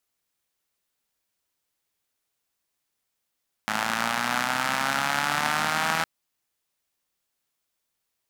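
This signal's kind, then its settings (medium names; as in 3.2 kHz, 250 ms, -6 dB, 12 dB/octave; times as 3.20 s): four-cylinder engine model, changing speed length 2.36 s, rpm 3200, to 4900, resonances 230/840/1300 Hz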